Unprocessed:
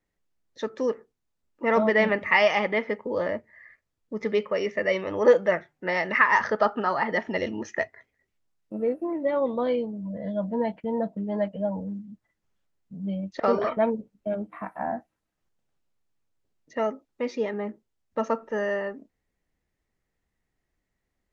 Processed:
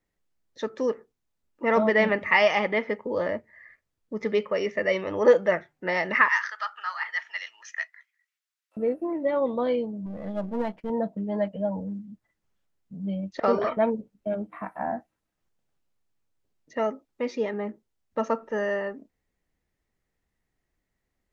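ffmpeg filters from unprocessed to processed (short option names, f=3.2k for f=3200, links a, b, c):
-filter_complex "[0:a]asettb=1/sr,asplit=3[a][b][c];[a]atrim=end=6.284[d];[b]atrim=start=6.28:end=8.77,asetpts=PTS-STARTPTS,afade=t=in:d=0.004:c=qsin,afade=t=out:st=2.486:d=0.004:c=qsin,highpass=f=1.3k:w=0.5412,highpass=f=1.3k:w=1.3066[e];[c]atrim=start=8.766[f];[d][e]acrossfade=d=0.004:c1=hsin:c2=qsin[g];[g][f]acrossfade=d=0.004:c1=qsin:c2=hsin,asettb=1/sr,asplit=3[h][i][j];[h]atrim=end=10.064[k];[i]atrim=start=10.06:end=10.9,asetpts=PTS-STARTPTS,afade=t=in:d=0.004:c=qsin,afade=t=out:st=0.836:d=0.004:c=qsin,aeval=exprs='if(lt(val(0),0),0.447*val(0),val(0))':c=same[l];[j]atrim=start=10.896[m];[k][l]acrossfade=d=0.004:c1=hsin:c2=qsin[n];[n][m]acrossfade=d=0.004:c1=qsin:c2=hsin"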